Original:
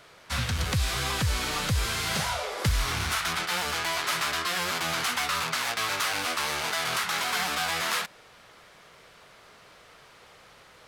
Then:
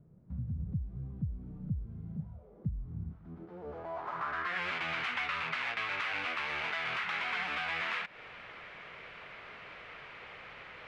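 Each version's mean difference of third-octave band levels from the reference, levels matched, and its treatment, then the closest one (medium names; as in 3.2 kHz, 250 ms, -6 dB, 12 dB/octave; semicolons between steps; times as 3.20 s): 15.0 dB: compression 10:1, threshold -36 dBFS, peak gain reduction 16 dB; low-pass sweep 180 Hz -> 2.4 kHz, 3.10–4.65 s; short-mantissa float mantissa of 8-bit; trim +1.5 dB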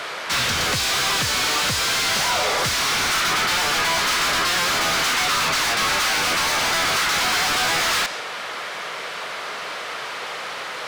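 5.0 dB: high-pass 110 Hz 12 dB/octave; dynamic bell 6.1 kHz, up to +6 dB, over -47 dBFS, Q 0.89; overdrive pedal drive 32 dB, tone 4.1 kHz, clips at -13 dBFS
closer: second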